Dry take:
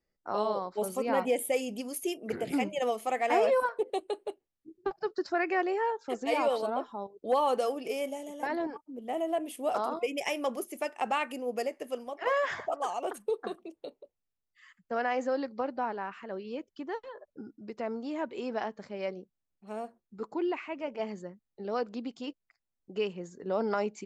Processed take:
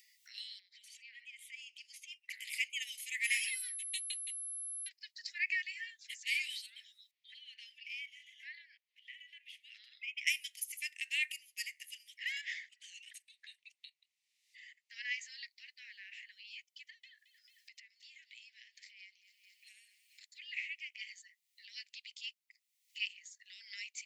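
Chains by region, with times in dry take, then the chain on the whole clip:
0.59–2.29 s: distance through air 140 m + compression 16:1, threshold -37 dBFS
3.23–4.87 s: treble shelf 4.6 kHz +5 dB + whistle 11 kHz -44 dBFS
7.11–10.27 s: high-pass 560 Hz + compression 4:1, threshold -31 dBFS + distance through air 260 m
12.41–14.92 s: distance through air 64 m + band-stop 3.3 kHz, Q 29 + compression 10:1, threshold -33 dBFS
16.90–20.21 s: compression, threshold -46 dBFS + feedback echo behind a high-pass 221 ms, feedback 67%, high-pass 2.2 kHz, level -18 dB
whole clip: steep high-pass 1.9 kHz 96 dB/octave; upward compressor, threshold -55 dBFS; trim +4 dB

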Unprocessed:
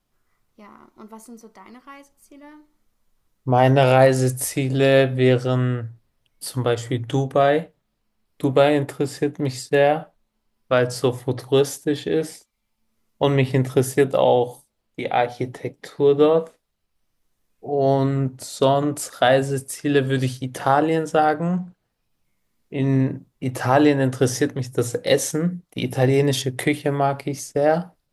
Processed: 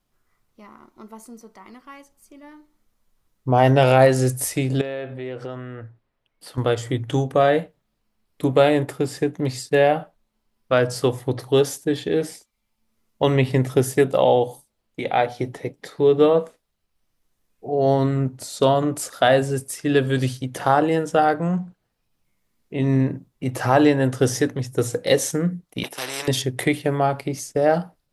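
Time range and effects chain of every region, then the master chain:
4.81–6.58 s: compression 12:1, threshold -24 dBFS + tone controls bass -8 dB, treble -14 dB
25.83–26.28 s: gate -26 dBFS, range -14 dB + ladder high-pass 370 Hz, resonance 30% + spectrum-flattening compressor 4:1
whole clip: none

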